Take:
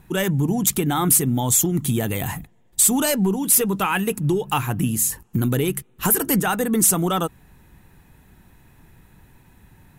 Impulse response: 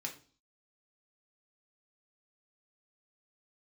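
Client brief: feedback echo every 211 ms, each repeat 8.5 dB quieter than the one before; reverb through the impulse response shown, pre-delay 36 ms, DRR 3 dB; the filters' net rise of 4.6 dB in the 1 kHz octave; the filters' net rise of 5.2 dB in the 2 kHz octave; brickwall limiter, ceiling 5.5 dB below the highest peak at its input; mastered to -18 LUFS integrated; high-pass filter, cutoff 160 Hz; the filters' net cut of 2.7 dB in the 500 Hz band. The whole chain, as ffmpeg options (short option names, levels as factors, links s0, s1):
-filter_complex "[0:a]highpass=160,equalizer=f=500:t=o:g=-5,equalizer=f=1000:t=o:g=6,equalizer=f=2000:t=o:g=5,alimiter=limit=0.316:level=0:latency=1,aecho=1:1:211|422|633|844:0.376|0.143|0.0543|0.0206,asplit=2[s0][s1];[1:a]atrim=start_sample=2205,adelay=36[s2];[s1][s2]afir=irnorm=-1:irlink=0,volume=0.75[s3];[s0][s3]amix=inputs=2:normalize=0,volume=1.12"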